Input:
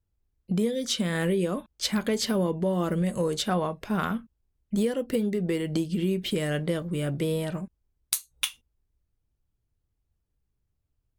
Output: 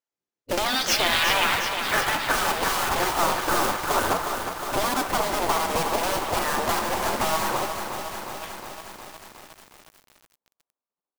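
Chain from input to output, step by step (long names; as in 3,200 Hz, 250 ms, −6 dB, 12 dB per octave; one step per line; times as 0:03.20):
noise gate with hold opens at −59 dBFS
low-shelf EQ 340 Hz +9.5 dB
comb filter 5.8 ms, depth 35%
mid-hump overdrive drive 25 dB, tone 2,700 Hz, clips at −7 dBFS
low-pass filter sweep 6,900 Hz → 930 Hz, 0:00.49–0:02.52
dynamic equaliser 4,300 Hz, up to +5 dB, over −39 dBFS, Q 1.3
floating-point word with a short mantissa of 2 bits
gate on every frequency bin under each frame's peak −15 dB weak
on a send: delay with a band-pass on its return 70 ms, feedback 70%, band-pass 1,300 Hz, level −10 dB
on the sum: feedback echo at a low word length 361 ms, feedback 80%, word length 7 bits, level −7.5 dB
level +1 dB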